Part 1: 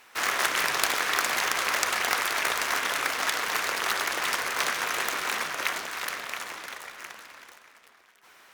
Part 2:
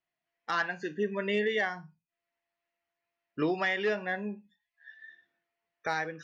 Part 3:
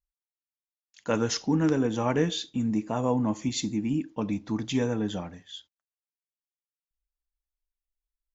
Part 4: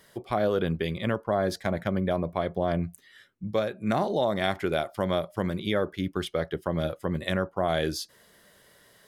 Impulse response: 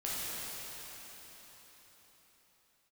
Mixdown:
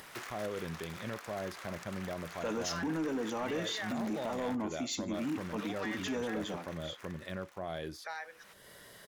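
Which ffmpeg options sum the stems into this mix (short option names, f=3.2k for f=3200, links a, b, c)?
-filter_complex "[0:a]acompressor=threshold=-30dB:ratio=10,adynamicequalizer=threshold=0.00631:dfrequency=1800:dqfactor=0.7:tfrequency=1800:tqfactor=0.7:attack=5:release=100:ratio=0.375:range=1.5:mode=cutabove:tftype=highshelf,volume=-12.5dB,asplit=3[a][b][c];[a]atrim=end=4.55,asetpts=PTS-STARTPTS,afade=t=out:st=4.546:d=0.004:c=hsin[d];[b]atrim=start=4.55:end=5.14,asetpts=PTS-STARTPTS,volume=0[e];[c]atrim=start=5.14,asetpts=PTS-STARTPTS,afade=t=in:d=0.004:c=hsin[f];[d][e][f]concat=n=3:v=0:a=1[g];[1:a]highpass=f=570:w=0.5412,highpass=f=570:w=1.3066,adelay=2200,volume=-9.5dB[h];[2:a]highpass=250,adelay=1350,volume=-3dB[i];[3:a]deesser=0.75,volume=-12.5dB[j];[g][h][i][j]amix=inputs=4:normalize=0,acompressor=mode=upward:threshold=-39dB:ratio=2.5,asoftclip=type=tanh:threshold=-25dB,alimiter=level_in=5dB:limit=-24dB:level=0:latency=1:release=13,volume=-5dB"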